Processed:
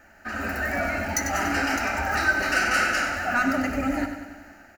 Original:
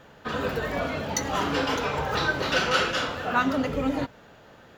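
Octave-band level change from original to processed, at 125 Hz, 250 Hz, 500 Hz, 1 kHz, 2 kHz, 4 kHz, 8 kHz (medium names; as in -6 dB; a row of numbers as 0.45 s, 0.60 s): -2.0 dB, +1.0 dB, -3.0 dB, +1.0 dB, +5.5 dB, -4.0 dB, +4.0 dB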